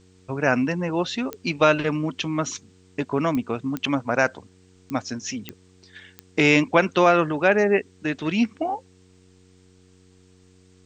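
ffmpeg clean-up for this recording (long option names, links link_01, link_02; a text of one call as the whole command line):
ffmpeg -i in.wav -af "adeclick=threshold=4,bandreject=frequency=92.3:width_type=h:width=4,bandreject=frequency=184.6:width_type=h:width=4,bandreject=frequency=276.9:width_type=h:width=4,bandreject=frequency=369.2:width_type=h:width=4,bandreject=frequency=461.5:width_type=h:width=4,agate=range=-21dB:threshold=-47dB" out.wav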